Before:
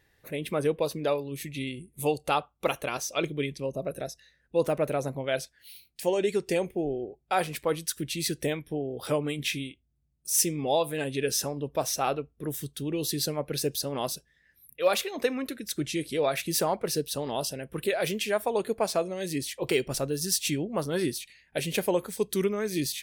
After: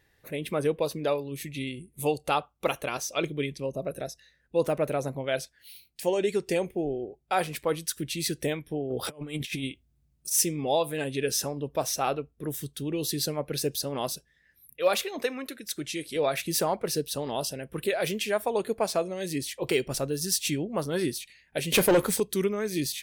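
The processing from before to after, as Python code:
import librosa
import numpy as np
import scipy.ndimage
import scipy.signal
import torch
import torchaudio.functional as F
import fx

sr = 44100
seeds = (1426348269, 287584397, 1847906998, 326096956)

y = fx.over_compress(x, sr, threshold_db=-35.0, ratio=-0.5, at=(8.89, 10.3), fade=0.02)
y = fx.low_shelf(y, sr, hz=340.0, db=-8.5, at=(15.22, 16.16))
y = fx.leveller(y, sr, passes=3, at=(21.72, 22.2))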